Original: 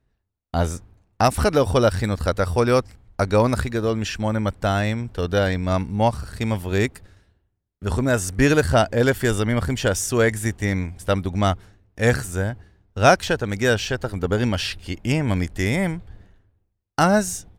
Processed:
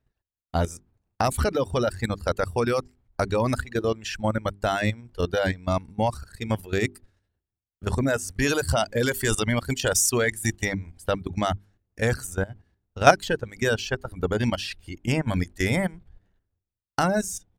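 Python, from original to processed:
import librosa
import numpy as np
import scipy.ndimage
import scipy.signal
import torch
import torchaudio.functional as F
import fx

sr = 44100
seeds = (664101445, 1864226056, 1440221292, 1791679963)

y = fx.high_shelf(x, sr, hz=2700.0, db=9.0, at=(8.3, 10.67), fade=0.02)
y = fx.level_steps(y, sr, step_db=11)
y = fx.hum_notches(y, sr, base_hz=50, count=8)
y = fx.dereverb_blind(y, sr, rt60_s=1.4)
y = y * 10.0 ** (1.5 / 20.0)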